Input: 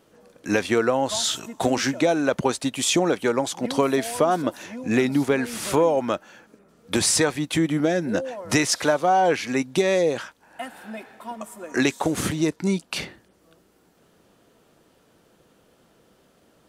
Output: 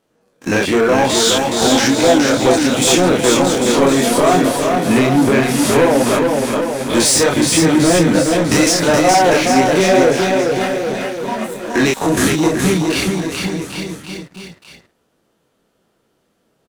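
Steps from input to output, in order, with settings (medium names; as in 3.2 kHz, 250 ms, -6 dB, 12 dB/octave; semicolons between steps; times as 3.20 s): spectrogram pixelated in time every 50 ms; chorus voices 2, 0.95 Hz, delay 26 ms, depth 4.2 ms; waveshaping leveller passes 3; bouncing-ball echo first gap 420 ms, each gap 0.9×, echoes 5; trim +3.5 dB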